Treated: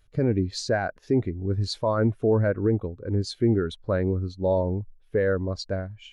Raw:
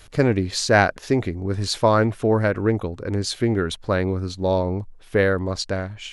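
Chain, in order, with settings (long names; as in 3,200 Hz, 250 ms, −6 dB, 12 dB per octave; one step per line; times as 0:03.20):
brickwall limiter −12.5 dBFS, peak gain reduction 10 dB
every bin expanded away from the loudest bin 1.5 to 1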